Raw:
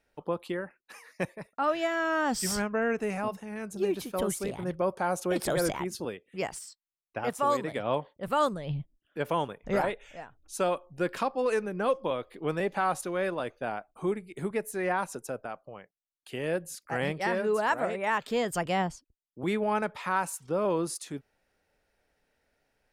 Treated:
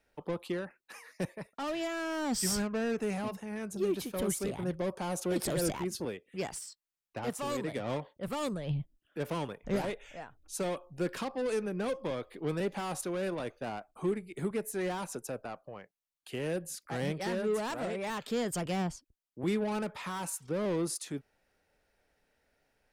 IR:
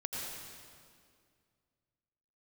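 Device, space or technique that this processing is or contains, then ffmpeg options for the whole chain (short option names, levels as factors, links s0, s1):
one-band saturation: -filter_complex "[0:a]acrossover=split=400|3900[s0][s1][s2];[s1]asoftclip=type=tanh:threshold=0.0141[s3];[s0][s3][s2]amix=inputs=3:normalize=0"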